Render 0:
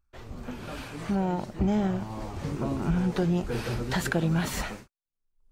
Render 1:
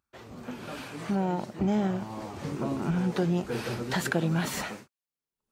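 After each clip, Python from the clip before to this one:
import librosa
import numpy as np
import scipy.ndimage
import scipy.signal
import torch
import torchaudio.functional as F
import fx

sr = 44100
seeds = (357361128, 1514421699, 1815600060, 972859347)

y = scipy.signal.sosfilt(scipy.signal.butter(2, 140.0, 'highpass', fs=sr, output='sos'), x)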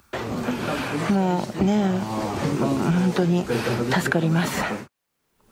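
y = fx.band_squash(x, sr, depth_pct=70)
y = y * 10.0 ** (7.0 / 20.0)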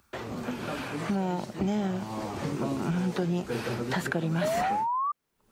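y = fx.spec_paint(x, sr, seeds[0], shape='rise', start_s=4.41, length_s=0.71, low_hz=590.0, high_hz=1200.0, level_db=-20.0)
y = y * 10.0 ** (-8.0 / 20.0)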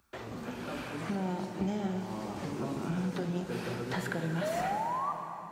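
y = fx.rev_plate(x, sr, seeds[1], rt60_s=3.5, hf_ratio=0.8, predelay_ms=0, drr_db=4.0)
y = y * 10.0 ** (-6.0 / 20.0)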